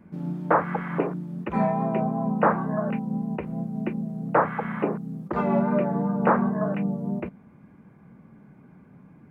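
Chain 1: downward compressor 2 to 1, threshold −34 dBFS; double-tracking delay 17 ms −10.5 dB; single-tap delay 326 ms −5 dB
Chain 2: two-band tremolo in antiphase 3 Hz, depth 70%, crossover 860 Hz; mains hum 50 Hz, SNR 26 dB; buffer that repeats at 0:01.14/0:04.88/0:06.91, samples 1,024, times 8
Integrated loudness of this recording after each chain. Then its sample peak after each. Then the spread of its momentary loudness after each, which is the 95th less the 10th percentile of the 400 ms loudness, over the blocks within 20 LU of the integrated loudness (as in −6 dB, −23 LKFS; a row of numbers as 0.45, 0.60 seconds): −31.0, −29.5 LKFS; −15.5, −10.5 dBFS; 21, 9 LU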